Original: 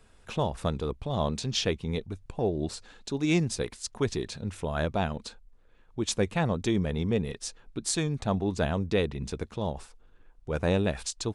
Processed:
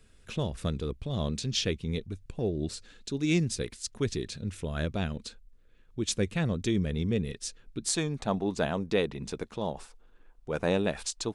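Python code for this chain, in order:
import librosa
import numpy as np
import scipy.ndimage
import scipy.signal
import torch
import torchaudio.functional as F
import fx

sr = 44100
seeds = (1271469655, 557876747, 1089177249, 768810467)

y = fx.peak_eq(x, sr, hz=fx.steps((0.0, 860.0), (7.88, 81.0)), db=-12.0, octaves=1.1)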